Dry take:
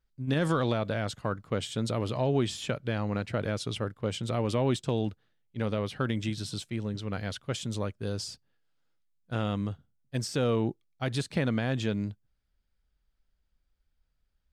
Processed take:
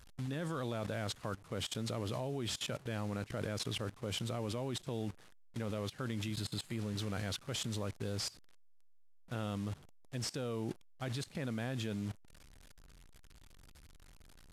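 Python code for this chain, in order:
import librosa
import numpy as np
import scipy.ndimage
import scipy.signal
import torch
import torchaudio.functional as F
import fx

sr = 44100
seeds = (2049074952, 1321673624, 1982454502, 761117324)

y = fx.delta_mod(x, sr, bps=64000, step_db=-40.5)
y = fx.notch(y, sr, hz=5700.0, q=5.3, at=(6.34, 6.79))
y = fx.level_steps(y, sr, step_db=20)
y = y * librosa.db_to_amplitude(2.0)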